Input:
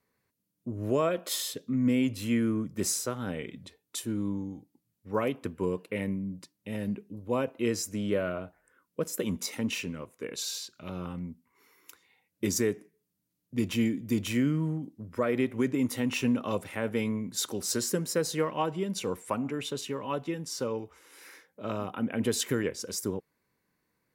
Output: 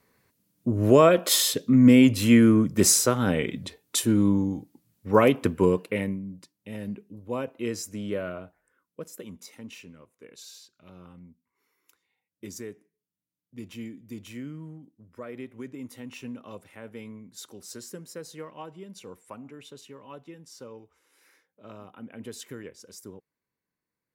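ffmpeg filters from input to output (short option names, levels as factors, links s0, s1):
-af "volume=3.35,afade=t=out:st=5.54:d=0.68:silence=0.237137,afade=t=out:st=8.28:d=1.04:silence=0.334965"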